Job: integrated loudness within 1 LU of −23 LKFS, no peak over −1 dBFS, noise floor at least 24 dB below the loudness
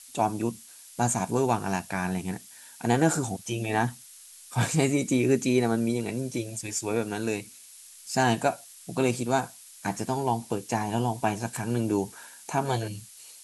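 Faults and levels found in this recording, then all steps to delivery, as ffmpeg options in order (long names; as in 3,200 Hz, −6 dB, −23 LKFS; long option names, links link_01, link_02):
background noise floor −49 dBFS; target noise floor −52 dBFS; integrated loudness −28.0 LKFS; sample peak −9.0 dBFS; target loudness −23.0 LKFS
→ -af "afftdn=noise_reduction=6:noise_floor=-49"
-af "volume=5dB"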